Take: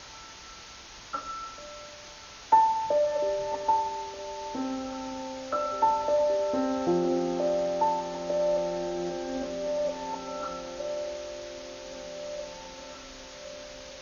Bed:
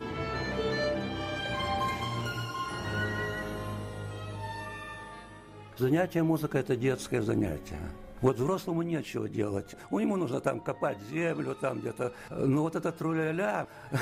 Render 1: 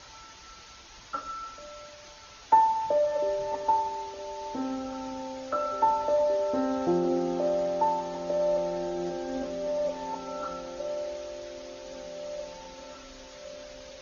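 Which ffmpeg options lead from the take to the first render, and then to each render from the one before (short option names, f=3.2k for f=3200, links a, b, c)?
-af "afftdn=nr=6:nf=-47"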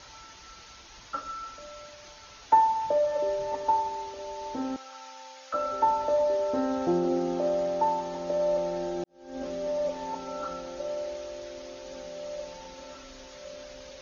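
-filter_complex "[0:a]asettb=1/sr,asplit=3[a][b][c];[a]atrim=end=4.764[d];[b]atrim=start=4.76:end=5.54,asetpts=PTS-STARTPTS,afade=t=in:d=0.004:c=qsin,afade=t=out:st=0.776:d=0.004:c=qsin,highpass=1.1k[e];[c]atrim=start=5.536[f];[d][e]acrossfade=d=0.004:c1=hsin:c2=qsin[g];[g][f]acrossfade=d=0.004:c1=qsin:c2=hsin,asplit=2[h][i];[h]atrim=end=9.04,asetpts=PTS-STARTPTS,afade=t=out:st=9.036:d=0.004:c=hsin[j];[i]atrim=start=9.04,asetpts=PTS-STARTPTS,afade=t=in:d=0.43:c=qua[k];[j][k]concat=n=2:v=0:a=1"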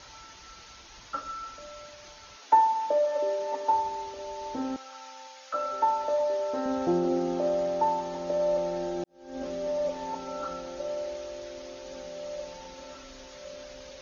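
-filter_complex "[0:a]asettb=1/sr,asplit=3[a][b][c];[a]atrim=end=2.364[d];[b]atrim=start=2.36:end=3.72,asetpts=PTS-STARTPTS,afade=t=in:d=0.004:c=qsin,afade=t=out:st=1.356:d=0.004:c=qsin,highpass=f=230:w=0.5412,highpass=f=230:w=1.3066[e];[c]atrim=start=3.716[f];[d][e]acrossfade=d=0.004:c1=hsin:c2=qsin[g];[g][f]acrossfade=d=0.004:c1=qsin:c2=hsin,asettb=1/sr,asplit=3[h][i][j];[h]atrim=end=5.274[k];[i]atrim=start=5.27:end=6.66,asetpts=PTS-STARTPTS,afade=t=in:d=0.004:c=qsin,afade=t=out:st=1.386:d=0.004:c=qsin,lowshelf=f=270:g=-11.5[l];[j]atrim=start=6.656[m];[k][l]acrossfade=d=0.004:c1=hsin:c2=qsin[n];[n][m]acrossfade=d=0.004:c1=qsin:c2=hsin"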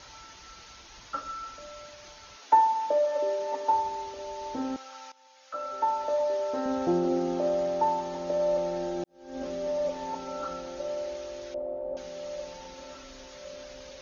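-filter_complex "[0:a]asettb=1/sr,asplit=3[a][b][c];[a]atrim=end=11.544[d];[b]atrim=start=11.54:end=11.97,asetpts=PTS-STARTPTS,afade=t=in:d=0.004:c=qsin,afade=t=out:st=0.426:d=0.004:c=qsin,lowpass=f=650:t=q:w=3.7[e];[c]atrim=start=11.966[f];[d][e]acrossfade=d=0.004:c1=hsin:c2=qsin[g];[g][f]acrossfade=d=0.004:c1=qsin:c2=hsin,asplit=2[h][i];[h]atrim=end=5.12,asetpts=PTS-STARTPTS,afade=t=out:st=5.116:d=0.004:c=hsin:silence=0.125893[j];[i]atrim=start=5.12,asetpts=PTS-STARTPTS,afade=t=in:d=1.34:c=qsin:silence=0.125893[k];[j][k]concat=n=2:v=0:a=1"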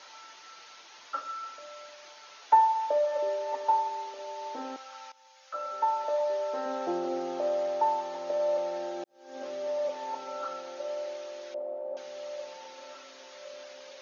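-filter_complex "[0:a]highpass=480,acrossover=split=5000[a][b];[b]acompressor=threshold=-60dB:ratio=4:attack=1:release=60[c];[a][c]amix=inputs=2:normalize=0"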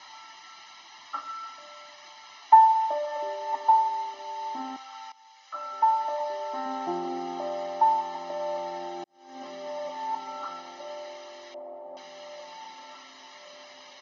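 -af "lowpass=5.9k,aecho=1:1:1:0.99"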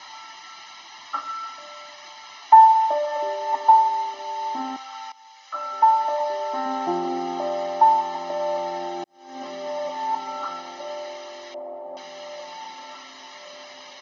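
-af "volume=6dB,alimiter=limit=-3dB:level=0:latency=1"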